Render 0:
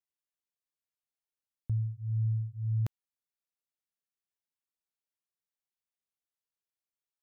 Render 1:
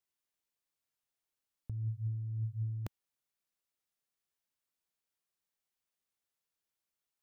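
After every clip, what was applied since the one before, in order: dynamic bell 150 Hz, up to -4 dB, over -44 dBFS, Q 1.5; compressor with a negative ratio -36 dBFS, ratio -1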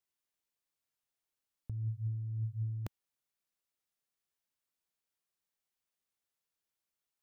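no audible change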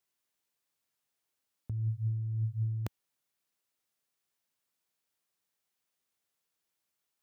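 high-pass 79 Hz; trim +5 dB

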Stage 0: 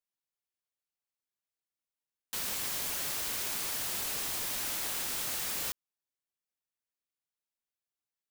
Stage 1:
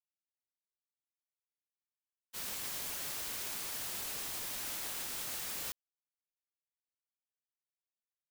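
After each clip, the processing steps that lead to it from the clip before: expander -29 dBFS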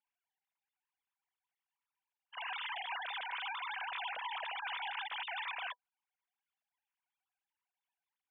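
formants replaced by sine waves; small resonant body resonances 210/490/980 Hz, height 10 dB, ringing for 65 ms; trim -1.5 dB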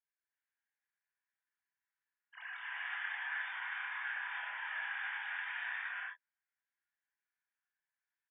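band-pass filter 1.7 kHz, Q 5.4; early reflections 23 ms -6 dB, 34 ms -10.5 dB; gated-style reverb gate 420 ms rising, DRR -5.5 dB; trim +1 dB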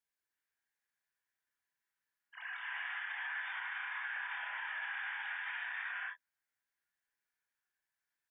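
peak limiter -34 dBFS, peak gain reduction 6.5 dB; trim +2 dB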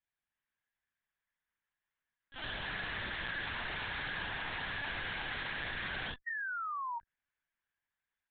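Chebyshev shaper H 8 -7 dB, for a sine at -31.5 dBFS; painted sound fall, 6.26–6.99 s, 900–1900 Hz -38 dBFS; LPC vocoder at 8 kHz pitch kept

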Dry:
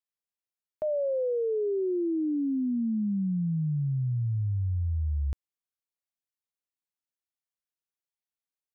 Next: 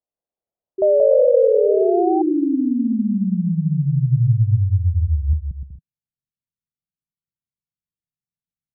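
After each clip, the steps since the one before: bouncing-ball echo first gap 180 ms, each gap 0.65×, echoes 5; low-pass sweep 640 Hz -> 160 Hz, 3.49–4.24 s; painted sound rise, 0.78–2.22 s, 380–790 Hz -28 dBFS; trim +5.5 dB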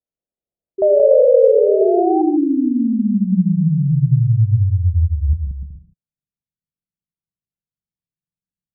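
level-controlled noise filter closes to 470 Hz, open at -14.5 dBFS; gated-style reverb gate 160 ms rising, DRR 8 dB; trim +2 dB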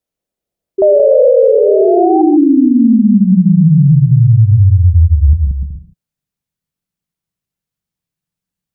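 loudness maximiser +11 dB; trim -1 dB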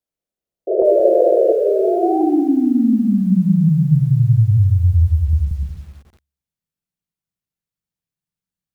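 de-hum 70.53 Hz, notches 38; painted sound noise, 0.67–1.53 s, 330–700 Hz -11 dBFS; bit-crushed delay 179 ms, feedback 35%, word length 6-bit, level -11 dB; trim -6.5 dB

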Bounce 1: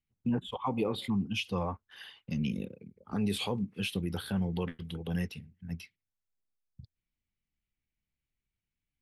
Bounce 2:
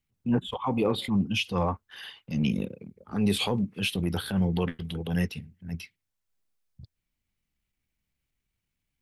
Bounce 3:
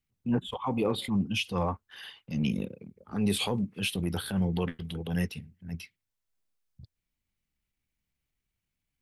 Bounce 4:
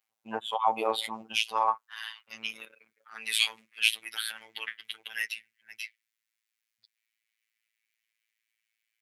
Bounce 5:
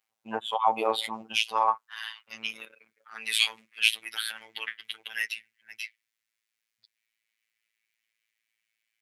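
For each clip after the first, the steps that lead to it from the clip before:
transient shaper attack -8 dB, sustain -2 dB; trim +7.5 dB
dynamic bell 9.5 kHz, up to +5 dB, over -54 dBFS, Q 1.4; trim -2.5 dB
high-pass sweep 740 Hz -> 2 kHz, 1.15–3.38 s; robot voice 111 Hz; trim +5 dB
treble shelf 9.8 kHz -4 dB; trim +2 dB

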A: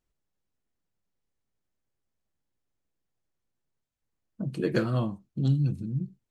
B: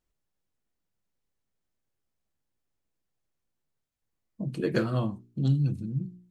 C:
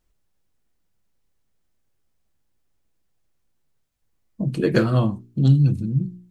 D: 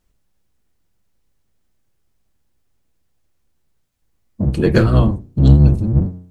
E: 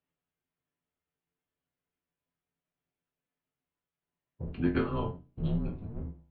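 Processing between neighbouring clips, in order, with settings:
spectral replace 4.25–4.45 s, 1.1–3.5 kHz before; de-hum 59.73 Hz, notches 7
bass shelf 85 Hz +6 dB; trim +7.5 dB
octave divider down 1 oct, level 0 dB; in parallel at -6 dB: sine folder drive 3 dB, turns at -2 dBFS; on the sum: trim -2 dB
chord resonator F#2 sus4, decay 0.24 s; mistuned SSB -110 Hz 200–3400 Hz; trim -1.5 dB

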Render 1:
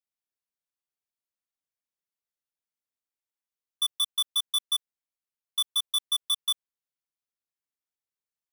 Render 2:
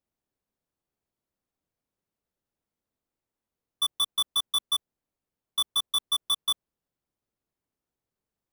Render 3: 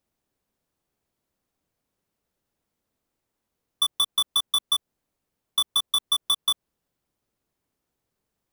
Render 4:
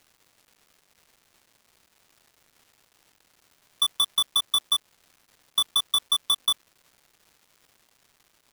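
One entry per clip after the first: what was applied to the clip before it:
tilt shelf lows +9.5 dB; trim +8.5 dB
compression, threshold -27 dBFS, peak gain reduction 5.5 dB; trim +7.5 dB
crackle 490 per s -47 dBFS

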